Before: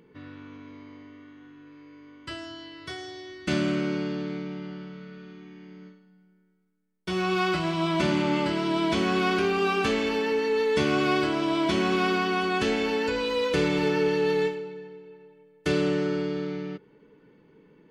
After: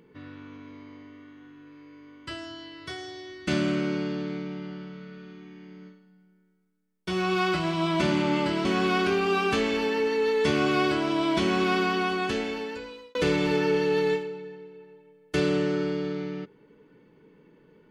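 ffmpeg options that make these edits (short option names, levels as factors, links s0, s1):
-filter_complex "[0:a]asplit=3[s0][s1][s2];[s0]atrim=end=8.652[s3];[s1]atrim=start=8.968:end=13.47,asetpts=PTS-STARTPTS,afade=t=out:st=3.332:d=1.17[s4];[s2]atrim=start=13.47,asetpts=PTS-STARTPTS,afade=t=in:d=0.004:c=hsin[s5];[s4][s5]concat=n=2:v=0:a=1[s6];[s3][s6]acrossfade=d=0.004:c1=hsin:c2=hsin"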